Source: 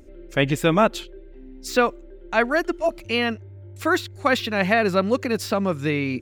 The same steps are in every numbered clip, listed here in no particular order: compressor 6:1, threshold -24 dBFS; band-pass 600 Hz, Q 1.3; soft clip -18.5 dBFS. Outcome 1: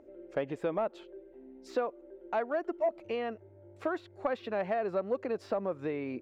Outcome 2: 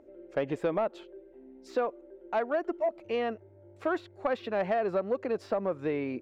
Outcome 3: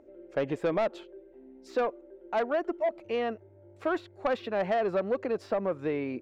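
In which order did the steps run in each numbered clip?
compressor > band-pass > soft clip; band-pass > compressor > soft clip; band-pass > soft clip > compressor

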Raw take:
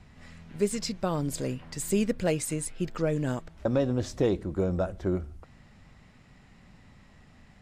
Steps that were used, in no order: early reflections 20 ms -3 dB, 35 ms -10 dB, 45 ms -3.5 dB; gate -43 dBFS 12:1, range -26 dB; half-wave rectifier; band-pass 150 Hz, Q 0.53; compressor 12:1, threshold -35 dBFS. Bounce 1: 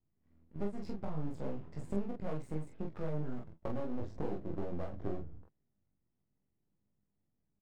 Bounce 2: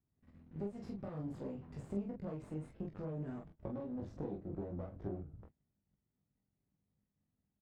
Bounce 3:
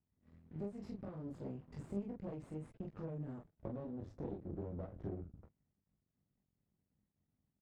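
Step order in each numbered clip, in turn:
gate > band-pass > half-wave rectifier > compressor > early reflections; half-wave rectifier > compressor > early reflections > gate > band-pass; compressor > early reflections > gate > half-wave rectifier > band-pass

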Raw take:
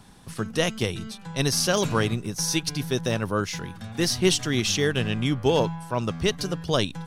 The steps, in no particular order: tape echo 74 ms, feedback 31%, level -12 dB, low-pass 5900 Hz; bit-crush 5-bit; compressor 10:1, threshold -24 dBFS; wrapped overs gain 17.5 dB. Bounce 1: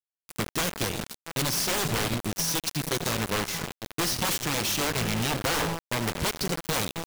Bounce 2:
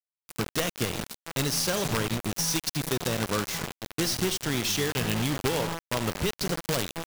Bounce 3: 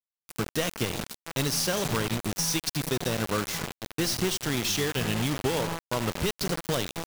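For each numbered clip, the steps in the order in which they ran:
tape echo > wrapped overs > compressor > bit-crush; compressor > wrapped overs > tape echo > bit-crush; tape echo > compressor > bit-crush > wrapped overs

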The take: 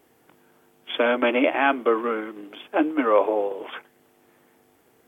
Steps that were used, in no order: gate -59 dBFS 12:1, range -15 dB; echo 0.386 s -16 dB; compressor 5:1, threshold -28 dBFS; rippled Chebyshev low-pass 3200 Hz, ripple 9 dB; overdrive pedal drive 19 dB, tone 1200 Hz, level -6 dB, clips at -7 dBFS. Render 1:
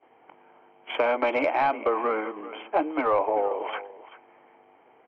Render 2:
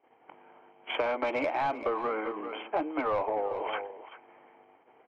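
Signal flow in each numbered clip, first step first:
rippled Chebyshev low-pass > compressor > echo > overdrive pedal > gate; gate > rippled Chebyshev low-pass > overdrive pedal > echo > compressor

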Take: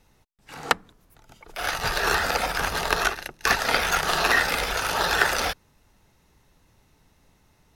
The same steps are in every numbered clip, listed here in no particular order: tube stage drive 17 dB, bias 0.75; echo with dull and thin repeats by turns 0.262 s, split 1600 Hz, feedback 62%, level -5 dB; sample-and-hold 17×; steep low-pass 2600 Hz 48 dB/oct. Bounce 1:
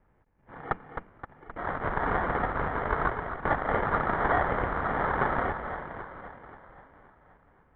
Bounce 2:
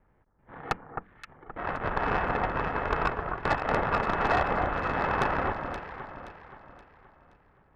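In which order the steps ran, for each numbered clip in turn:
tube stage > echo with dull and thin repeats by turns > sample-and-hold > steep low-pass; sample-and-hold > steep low-pass > tube stage > echo with dull and thin repeats by turns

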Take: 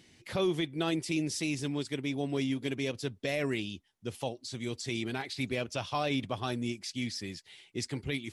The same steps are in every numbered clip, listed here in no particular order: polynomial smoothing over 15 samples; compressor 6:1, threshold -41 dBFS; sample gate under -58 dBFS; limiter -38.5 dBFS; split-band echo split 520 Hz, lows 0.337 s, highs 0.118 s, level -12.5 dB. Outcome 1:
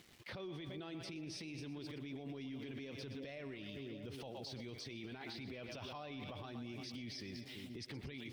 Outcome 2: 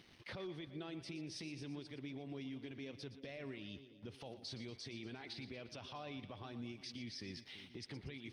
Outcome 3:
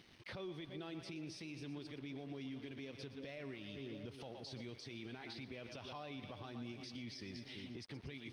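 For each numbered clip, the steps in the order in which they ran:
polynomial smoothing > sample gate > split-band echo > limiter > compressor; sample gate > polynomial smoothing > compressor > limiter > split-band echo; split-band echo > compressor > limiter > sample gate > polynomial smoothing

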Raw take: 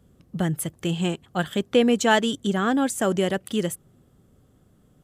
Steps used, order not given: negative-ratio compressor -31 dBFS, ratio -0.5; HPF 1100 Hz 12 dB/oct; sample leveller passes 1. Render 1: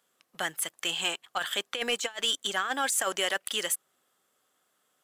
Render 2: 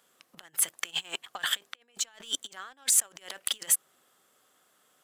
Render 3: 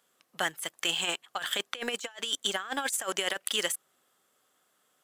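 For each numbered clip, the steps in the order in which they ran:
HPF > negative-ratio compressor > sample leveller; negative-ratio compressor > HPF > sample leveller; HPF > sample leveller > negative-ratio compressor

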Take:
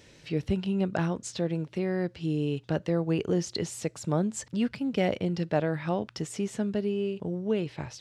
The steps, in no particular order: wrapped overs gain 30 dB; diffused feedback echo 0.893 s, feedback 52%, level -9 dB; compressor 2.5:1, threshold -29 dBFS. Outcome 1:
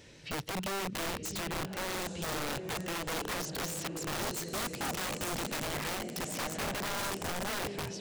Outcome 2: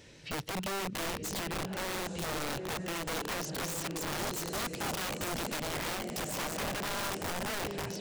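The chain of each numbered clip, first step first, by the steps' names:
compressor > diffused feedback echo > wrapped overs; diffused feedback echo > compressor > wrapped overs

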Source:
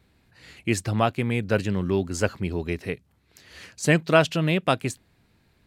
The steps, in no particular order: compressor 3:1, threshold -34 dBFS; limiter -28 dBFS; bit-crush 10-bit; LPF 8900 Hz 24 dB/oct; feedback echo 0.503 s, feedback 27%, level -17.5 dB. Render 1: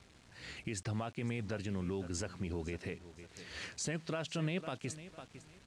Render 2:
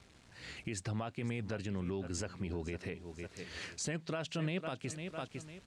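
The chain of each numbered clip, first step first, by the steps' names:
compressor > feedback echo > limiter > bit-crush > LPF; feedback echo > bit-crush > compressor > limiter > LPF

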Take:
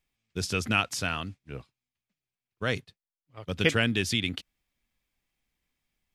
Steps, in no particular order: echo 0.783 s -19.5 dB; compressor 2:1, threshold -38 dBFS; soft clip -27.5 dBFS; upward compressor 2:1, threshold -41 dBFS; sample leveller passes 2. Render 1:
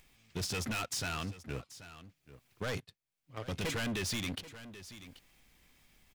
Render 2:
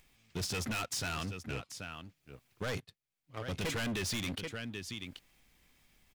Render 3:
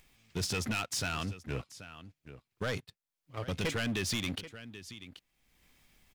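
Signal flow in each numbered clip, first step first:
sample leveller > soft clip > upward compressor > echo > compressor; upward compressor > sample leveller > echo > soft clip > compressor; compressor > sample leveller > echo > soft clip > upward compressor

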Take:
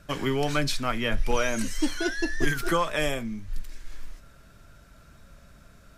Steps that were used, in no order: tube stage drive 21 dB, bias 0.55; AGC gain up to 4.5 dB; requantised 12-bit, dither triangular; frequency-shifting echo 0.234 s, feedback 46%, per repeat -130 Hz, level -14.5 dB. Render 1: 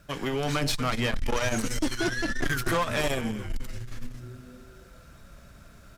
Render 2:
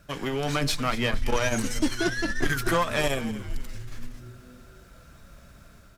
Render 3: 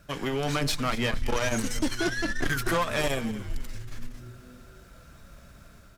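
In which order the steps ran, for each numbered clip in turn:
frequency-shifting echo > AGC > requantised > tube stage; requantised > tube stage > AGC > frequency-shifting echo; requantised > AGC > tube stage > frequency-shifting echo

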